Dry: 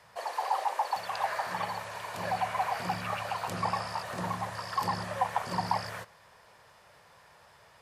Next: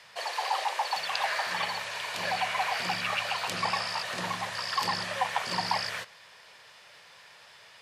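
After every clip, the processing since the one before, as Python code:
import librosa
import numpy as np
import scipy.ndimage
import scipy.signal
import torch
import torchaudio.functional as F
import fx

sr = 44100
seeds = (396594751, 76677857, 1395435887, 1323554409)

y = fx.weighting(x, sr, curve='D')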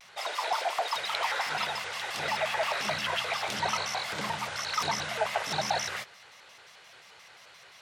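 y = 10.0 ** (-15.0 / 20.0) * np.tanh(x / 10.0 ** (-15.0 / 20.0))
y = fx.vibrato_shape(y, sr, shape='square', rate_hz=5.7, depth_cents=250.0)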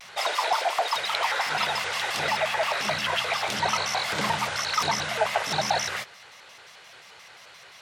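y = fx.rider(x, sr, range_db=10, speed_s=0.5)
y = F.gain(torch.from_numpy(y), 5.0).numpy()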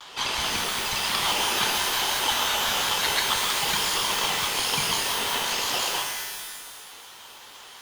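y = fx.highpass_res(x, sr, hz=2000.0, q=2.4)
y = y * np.sin(2.0 * np.pi * 1100.0 * np.arange(len(y)) / sr)
y = fx.rev_shimmer(y, sr, seeds[0], rt60_s=1.4, semitones=12, shimmer_db=-2, drr_db=3.0)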